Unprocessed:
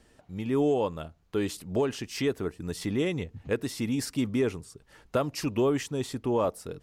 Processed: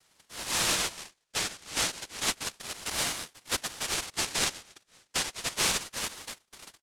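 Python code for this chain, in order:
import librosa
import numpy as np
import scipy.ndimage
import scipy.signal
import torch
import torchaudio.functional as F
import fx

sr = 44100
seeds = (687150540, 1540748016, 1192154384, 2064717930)

y = fx.tape_stop_end(x, sr, length_s=1.09)
y = scipy.signal.sosfilt(scipy.signal.butter(2, 160.0, 'highpass', fs=sr, output='sos'), y)
y = fx.noise_vocoder(y, sr, seeds[0], bands=1)
y = fx.ring_lfo(y, sr, carrier_hz=1800.0, swing_pct=45, hz=0.31)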